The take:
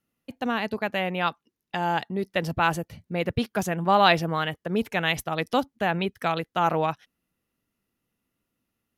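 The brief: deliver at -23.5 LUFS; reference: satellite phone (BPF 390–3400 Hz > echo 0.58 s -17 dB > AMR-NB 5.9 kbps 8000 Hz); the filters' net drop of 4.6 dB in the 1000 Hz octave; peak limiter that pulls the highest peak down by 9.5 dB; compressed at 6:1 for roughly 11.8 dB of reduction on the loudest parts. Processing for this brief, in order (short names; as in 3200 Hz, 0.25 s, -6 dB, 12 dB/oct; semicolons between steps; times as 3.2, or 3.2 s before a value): bell 1000 Hz -6 dB; compressor 6:1, threshold -30 dBFS; limiter -26.5 dBFS; BPF 390–3400 Hz; echo 0.58 s -17 dB; gain +18.5 dB; AMR-NB 5.9 kbps 8000 Hz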